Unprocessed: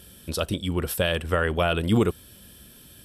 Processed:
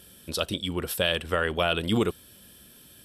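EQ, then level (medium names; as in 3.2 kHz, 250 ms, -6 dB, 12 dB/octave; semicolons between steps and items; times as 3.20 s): dynamic bell 3.7 kHz, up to +6 dB, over -42 dBFS, Q 1.3; bass shelf 120 Hz -8.5 dB; -2.0 dB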